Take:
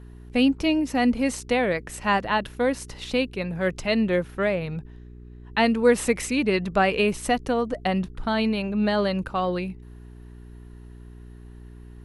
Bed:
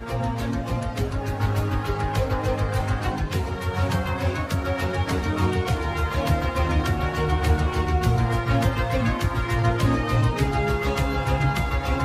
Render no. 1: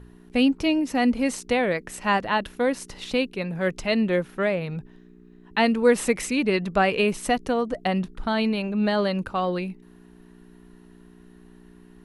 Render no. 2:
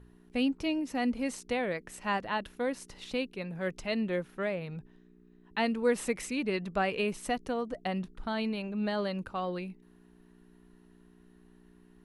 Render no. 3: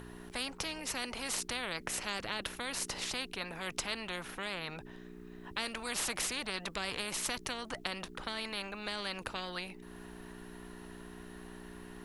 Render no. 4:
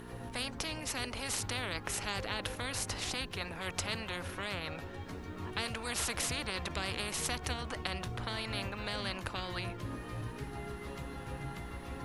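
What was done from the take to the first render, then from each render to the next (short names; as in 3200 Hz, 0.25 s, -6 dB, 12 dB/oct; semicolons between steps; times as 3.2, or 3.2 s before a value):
de-hum 60 Hz, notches 2
gain -9 dB
upward compressor, threshold -49 dBFS; spectral compressor 4:1
add bed -20.5 dB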